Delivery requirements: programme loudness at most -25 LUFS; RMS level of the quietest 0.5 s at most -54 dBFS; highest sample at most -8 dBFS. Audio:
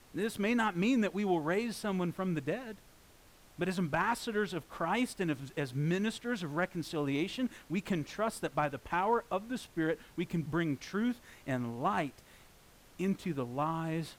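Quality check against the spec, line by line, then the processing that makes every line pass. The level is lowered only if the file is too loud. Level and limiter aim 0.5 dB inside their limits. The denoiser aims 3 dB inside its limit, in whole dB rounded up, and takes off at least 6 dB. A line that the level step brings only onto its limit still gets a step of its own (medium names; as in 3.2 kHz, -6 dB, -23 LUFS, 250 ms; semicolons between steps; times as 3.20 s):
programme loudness -34.5 LUFS: pass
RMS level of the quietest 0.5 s -60 dBFS: pass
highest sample -18.5 dBFS: pass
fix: none needed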